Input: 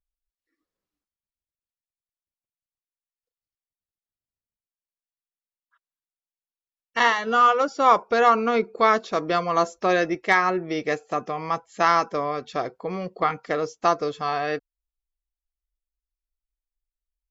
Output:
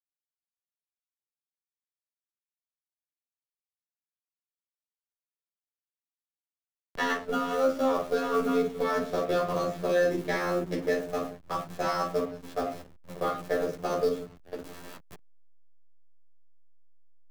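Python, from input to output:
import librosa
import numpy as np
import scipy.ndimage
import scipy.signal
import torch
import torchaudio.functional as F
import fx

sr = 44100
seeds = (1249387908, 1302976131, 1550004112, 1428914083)

p1 = fx.echo_wet_highpass(x, sr, ms=419, feedback_pct=44, hz=2800.0, wet_db=-8.5)
p2 = fx.quant_dither(p1, sr, seeds[0], bits=6, dither='triangular')
p3 = p1 + (p2 * librosa.db_to_amplitude(-10.0))
p4 = fx.peak_eq(p3, sr, hz=2200.0, db=-10.5, octaves=1.1)
p5 = fx.level_steps(p4, sr, step_db=23)
p6 = fx.robotise(p5, sr, hz=88.1)
p7 = fx.peak_eq(p6, sr, hz=920.0, db=-14.0, octaves=0.54)
p8 = fx.room_shoebox(p7, sr, seeds[1], volume_m3=260.0, walls='furnished', distance_m=5.6)
p9 = fx.backlash(p8, sr, play_db=-30.5)
p10 = fx.band_squash(p9, sr, depth_pct=40)
y = p10 * librosa.db_to_amplitude(-5.5)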